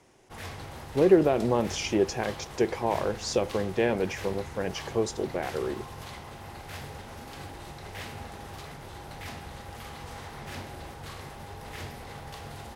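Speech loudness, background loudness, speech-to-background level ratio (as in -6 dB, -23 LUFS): -27.5 LUFS, -41.5 LUFS, 14.0 dB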